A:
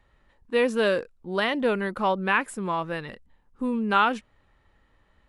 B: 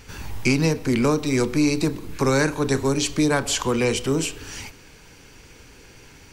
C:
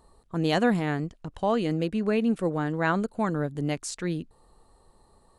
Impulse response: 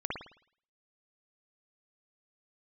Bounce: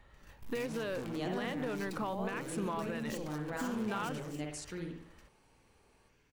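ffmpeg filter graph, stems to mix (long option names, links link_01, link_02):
-filter_complex "[0:a]alimiter=limit=-15dB:level=0:latency=1,acompressor=threshold=-34dB:ratio=12,volume=3dB,asplit=2[link_01][link_02];[1:a]volume=28.5dB,asoftclip=hard,volume=-28.5dB,dynaudnorm=framelen=180:gausssize=5:maxgain=6dB,adelay=100,volume=-13dB,asplit=2[link_03][link_04];[link_04]volume=-19.5dB[link_05];[2:a]highpass=97,adelay=700,volume=-13.5dB,asplit=2[link_06][link_07];[link_07]volume=-4.5dB[link_08];[link_02]apad=whole_len=283192[link_09];[link_03][link_09]sidechaingate=range=-33dB:threshold=-54dB:ratio=16:detection=peak[link_10];[link_10][link_06]amix=inputs=2:normalize=0,highshelf=frequency=9800:gain=6.5,acompressor=threshold=-44dB:ratio=6,volume=0dB[link_11];[3:a]atrim=start_sample=2205[link_12];[link_05][link_08]amix=inputs=2:normalize=0[link_13];[link_13][link_12]afir=irnorm=-1:irlink=0[link_14];[link_01][link_11][link_14]amix=inputs=3:normalize=0,alimiter=level_in=2.5dB:limit=-24dB:level=0:latency=1:release=378,volume=-2.5dB"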